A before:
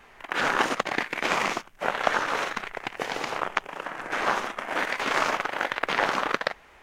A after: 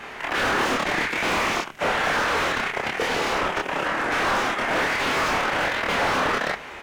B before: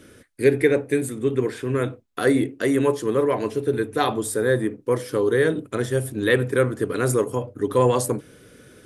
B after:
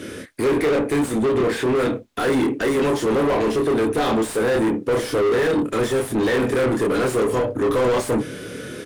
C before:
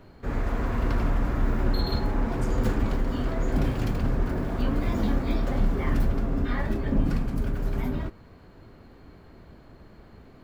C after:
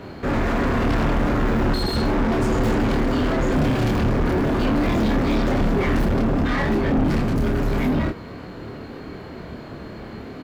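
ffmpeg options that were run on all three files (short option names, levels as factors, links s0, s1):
-filter_complex "[0:a]equalizer=f=940:w=0.41:g=-11,asplit=2[s0][s1];[s1]adelay=27,volume=0.708[s2];[s0][s2]amix=inputs=2:normalize=0,asplit=2[s3][s4];[s4]highpass=f=720:p=1,volume=63.1,asoftclip=type=tanh:threshold=0.335[s5];[s3][s5]amix=inputs=2:normalize=0,lowpass=f=1200:p=1,volume=0.501,volume=0.841"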